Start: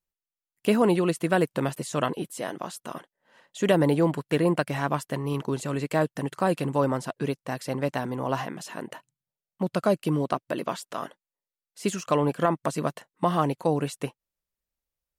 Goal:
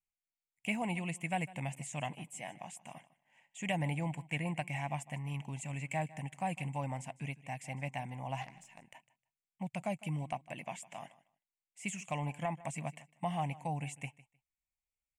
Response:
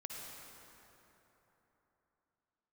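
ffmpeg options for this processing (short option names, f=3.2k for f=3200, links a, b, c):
-filter_complex "[0:a]firequalizer=gain_entry='entry(140,0);entry(400,-22);entry(770,2);entry(1300,-21);entry(2200,9);entry(4100,-17);entry(7500,4);entry(12000,-12)':delay=0.05:min_phase=1,asplit=3[a][b][c];[a]afade=t=out:st=8.41:d=0.02[d];[b]aeval=exprs='0.0708*(cos(1*acos(clip(val(0)/0.0708,-1,1)))-cos(1*PI/2))+0.0158*(cos(3*acos(clip(val(0)/0.0708,-1,1)))-cos(3*PI/2))+0.000501*(cos(8*acos(clip(val(0)/0.0708,-1,1)))-cos(8*PI/2))':c=same,afade=t=in:st=8.41:d=0.02,afade=t=out:st=8.94:d=0.02[e];[c]afade=t=in:st=8.94:d=0.02[f];[d][e][f]amix=inputs=3:normalize=0,aecho=1:1:154|308:0.106|0.0191,volume=-7dB"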